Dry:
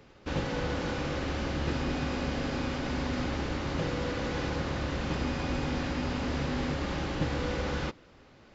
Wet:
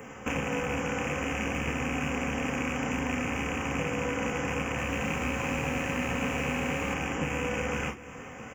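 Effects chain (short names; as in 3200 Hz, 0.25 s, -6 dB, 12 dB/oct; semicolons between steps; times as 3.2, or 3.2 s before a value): rattling part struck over -32 dBFS, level -23 dBFS; tone controls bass -5 dB, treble +8 dB; compressor 5:1, threshold -43 dBFS, peak gain reduction 14.5 dB; Butterworth band-stop 4100 Hz, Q 0.99; high shelf 6200 Hz +6.5 dB; echo 0.666 s -17 dB; reverb, pre-delay 3 ms, DRR 2.5 dB; 4.66–6.94 lo-fi delay 0.115 s, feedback 80%, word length 9-bit, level -10.5 dB; gain +6 dB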